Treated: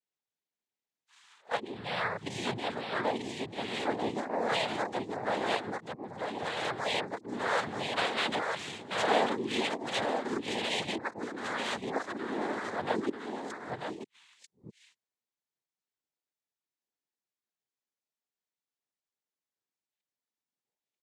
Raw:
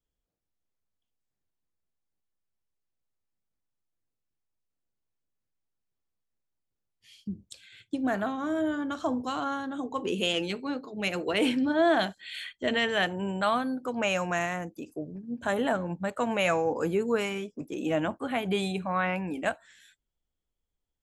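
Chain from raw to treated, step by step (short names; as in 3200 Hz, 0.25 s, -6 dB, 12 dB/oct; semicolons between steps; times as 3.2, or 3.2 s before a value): whole clip reversed; Bessel high-pass 340 Hz, order 2; echo 0.941 s -4.5 dB; noise vocoder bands 6; gain -3 dB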